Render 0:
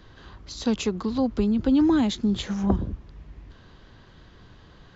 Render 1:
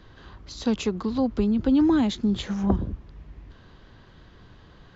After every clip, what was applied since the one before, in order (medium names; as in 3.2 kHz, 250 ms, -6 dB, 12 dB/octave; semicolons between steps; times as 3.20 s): treble shelf 5.7 kHz -5.5 dB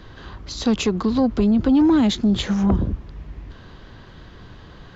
in parallel at +2 dB: peak limiter -18.5 dBFS, peak gain reduction 10.5 dB; on the sum: saturation -10.5 dBFS, distortion -20 dB; trim +1 dB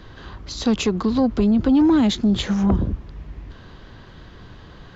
no audible change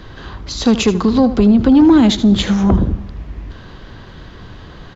delay 78 ms -13.5 dB; on a send at -23 dB: reverberation RT60 1.3 s, pre-delay 118 ms; on the sum: trim +6.5 dB